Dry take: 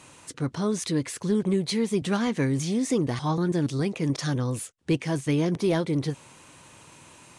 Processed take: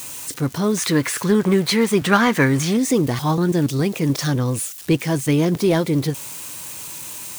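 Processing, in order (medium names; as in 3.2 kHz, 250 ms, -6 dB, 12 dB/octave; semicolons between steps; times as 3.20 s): zero-crossing glitches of -33 dBFS; 0.77–2.77 s: peaking EQ 1.4 kHz +10.5 dB 1.8 oct; trim +6.5 dB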